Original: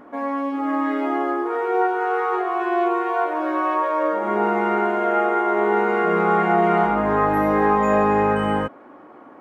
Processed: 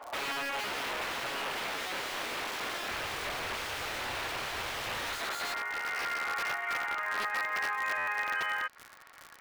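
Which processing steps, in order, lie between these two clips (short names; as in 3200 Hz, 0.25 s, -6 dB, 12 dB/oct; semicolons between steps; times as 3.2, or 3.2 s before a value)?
compressor 6:1, threshold -25 dBFS, peak gain reduction 11.5 dB; high-pass sweep 730 Hz -> 1900 Hz, 4.65–5.71; short-mantissa float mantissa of 4-bit; wrapped overs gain 26 dB; 2.91–5.19 resonant low shelf 140 Hz +8 dB, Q 1.5; crossover distortion -55 dBFS; vocal rider 2 s; tone controls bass -12 dB, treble -13 dB; crackle 92/s -35 dBFS; stuck buffer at 7.97, samples 512, times 8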